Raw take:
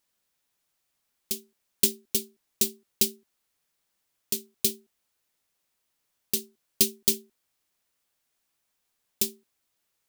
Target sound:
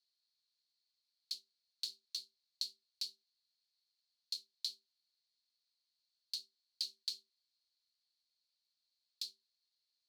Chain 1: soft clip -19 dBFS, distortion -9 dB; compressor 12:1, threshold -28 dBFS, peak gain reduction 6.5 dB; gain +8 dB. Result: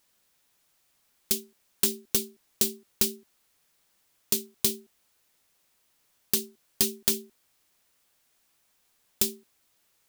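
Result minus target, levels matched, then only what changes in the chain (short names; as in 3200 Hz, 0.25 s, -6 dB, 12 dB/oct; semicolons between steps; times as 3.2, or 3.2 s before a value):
4000 Hz band -9.0 dB
add after compressor: band-pass 4300 Hz, Q 12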